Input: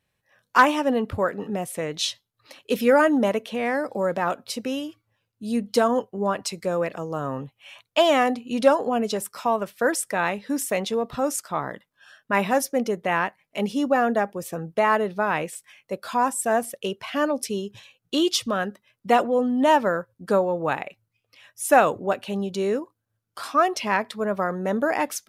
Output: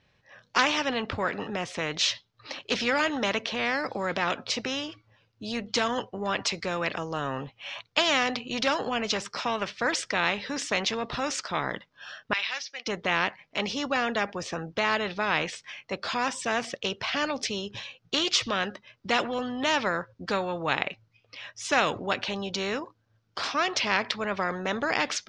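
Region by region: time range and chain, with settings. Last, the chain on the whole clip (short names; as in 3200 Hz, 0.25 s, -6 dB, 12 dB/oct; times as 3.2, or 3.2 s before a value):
12.33–12.87 Butterworth band-pass 3400 Hz, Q 1.1 + de-esser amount 95%
whole clip: dynamic EQ 2600 Hz, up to +7 dB, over -38 dBFS, Q 0.81; steep low-pass 5900 Hz 36 dB/oct; spectral compressor 2:1; gain -5.5 dB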